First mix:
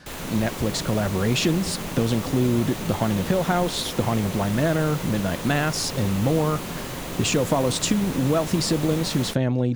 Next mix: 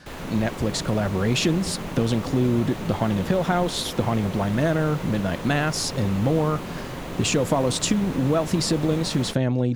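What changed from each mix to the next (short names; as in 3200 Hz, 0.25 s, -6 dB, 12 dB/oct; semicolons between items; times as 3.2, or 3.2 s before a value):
background: add high shelf 4200 Hz -11.5 dB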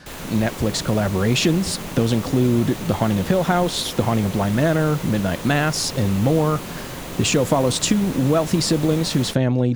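speech +3.5 dB; background: add high shelf 4200 Hz +11.5 dB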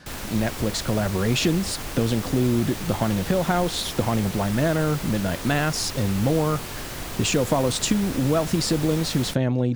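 speech -3.5 dB; reverb: off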